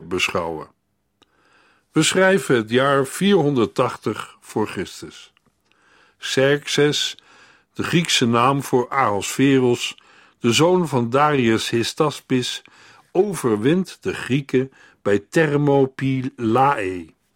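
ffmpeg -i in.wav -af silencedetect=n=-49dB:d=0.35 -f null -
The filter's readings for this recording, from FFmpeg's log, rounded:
silence_start: 0.71
silence_end: 1.22 | silence_duration: 0.51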